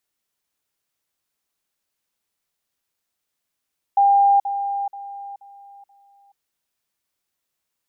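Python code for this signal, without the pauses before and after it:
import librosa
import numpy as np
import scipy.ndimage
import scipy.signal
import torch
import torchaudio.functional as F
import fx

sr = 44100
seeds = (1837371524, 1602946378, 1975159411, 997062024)

y = fx.level_ladder(sr, hz=800.0, from_db=-11.5, step_db=-10.0, steps=5, dwell_s=0.43, gap_s=0.05)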